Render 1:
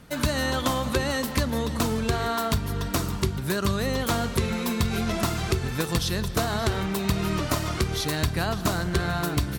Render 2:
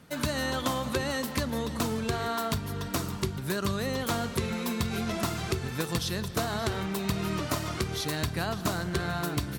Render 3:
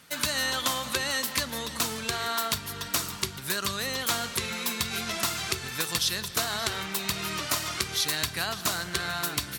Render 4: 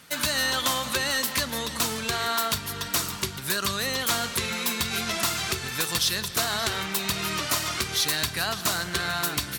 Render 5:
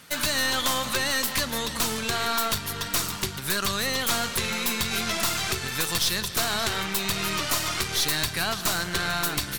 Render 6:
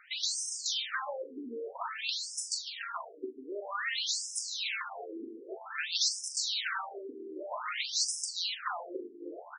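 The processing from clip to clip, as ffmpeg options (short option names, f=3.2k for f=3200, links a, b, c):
-af "highpass=83,volume=-4dB"
-af "tiltshelf=f=970:g=-8.5"
-af "asoftclip=type=hard:threshold=-21.5dB,volume=3.5dB"
-af "aeval=exprs='(tanh(14.1*val(0)+0.55)-tanh(0.55))/14.1':c=same,volume=4dB"
-af "aecho=1:1:42|78:0.355|0.126,afftfilt=real='re*between(b*sr/1024,320*pow(7200/320,0.5+0.5*sin(2*PI*0.52*pts/sr))/1.41,320*pow(7200/320,0.5+0.5*sin(2*PI*0.52*pts/sr))*1.41)':imag='im*between(b*sr/1024,320*pow(7200/320,0.5+0.5*sin(2*PI*0.52*pts/sr))/1.41,320*pow(7200/320,0.5+0.5*sin(2*PI*0.52*pts/sr))*1.41)':win_size=1024:overlap=0.75,volume=-2dB"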